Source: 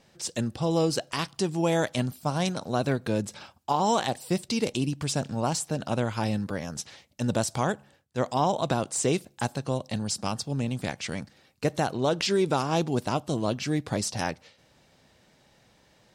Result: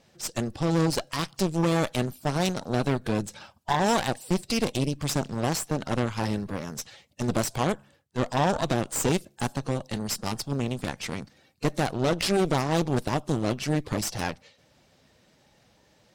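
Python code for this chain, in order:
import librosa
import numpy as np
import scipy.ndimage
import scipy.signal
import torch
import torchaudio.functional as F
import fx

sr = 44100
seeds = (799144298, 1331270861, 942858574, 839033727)

y = fx.spec_quant(x, sr, step_db=15)
y = fx.cheby_harmonics(y, sr, harmonics=(6,), levels_db=(-14,), full_scale_db=-12.5)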